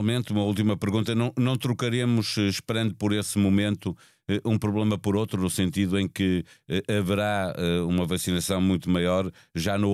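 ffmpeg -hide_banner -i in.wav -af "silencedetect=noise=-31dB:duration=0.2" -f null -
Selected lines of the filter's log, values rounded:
silence_start: 3.92
silence_end: 4.29 | silence_duration: 0.37
silence_start: 6.41
silence_end: 6.70 | silence_duration: 0.29
silence_start: 9.29
silence_end: 9.56 | silence_duration: 0.26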